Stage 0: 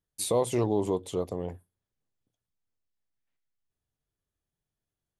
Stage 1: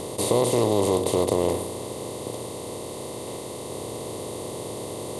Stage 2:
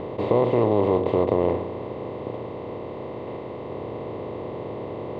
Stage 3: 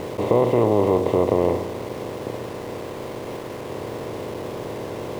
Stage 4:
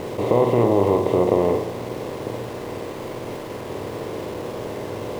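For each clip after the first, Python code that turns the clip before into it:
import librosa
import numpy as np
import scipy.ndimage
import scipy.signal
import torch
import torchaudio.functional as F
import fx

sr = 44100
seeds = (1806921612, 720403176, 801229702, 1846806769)

y1 = fx.bin_compress(x, sr, power=0.2)
y2 = scipy.signal.sosfilt(scipy.signal.butter(4, 2400.0, 'lowpass', fs=sr, output='sos'), y1)
y2 = y2 * librosa.db_to_amplitude(1.5)
y3 = np.where(np.abs(y2) >= 10.0 ** (-37.0 / 20.0), y2, 0.0)
y3 = y3 * librosa.db_to_amplitude(2.0)
y4 = fx.room_flutter(y3, sr, wall_m=8.6, rt60_s=0.4)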